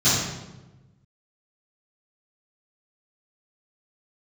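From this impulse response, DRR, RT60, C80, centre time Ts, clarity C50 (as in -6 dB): -16.5 dB, 1.1 s, 2.5 dB, 78 ms, -1.0 dB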